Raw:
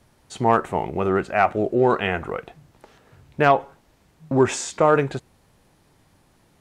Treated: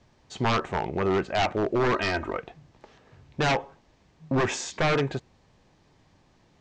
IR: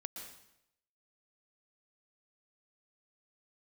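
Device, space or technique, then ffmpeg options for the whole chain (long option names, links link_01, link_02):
synthesiser wavefolder: -filter_complex "[0:a]bandreject=frequency=1400:width=13,aeval=exprs='0.168*(abs(mod(val(0)/0.168+3,4)-2)-1)':channel_layout=same,lowpass=frequency=7100:width=0.5412,lowpass=frequency=7100:width=1.3066,lowpass=frequency=8100:width=0.5412,lowpass=frequency=8100:width=1.3066,asettb=1/sr,asplit=3[link_01][link_02][link_03];[link_01]atrim=end=1.944[link_04];[link_02]atrim=start=1.94:end=2.37,asetpts=PTS-STARTPTS,afade=type=in:duration=0.004:curve=qsin,afade=type=out:start_time=0.426:duration=0.004:curve=qsin,aecho=1:1:3.2:0.7,atrim=end_sample=18963[link_05];[link_03]atrim=start=2.366[link_06];[link_04][link_05]acrossfade=duration=0.004:curve1=hsin:curve2=qsin[link_07];[link_07][link_06]acrossfade=duration=0.004:curve1=qsin:curve2=hsin,volume=-2dB"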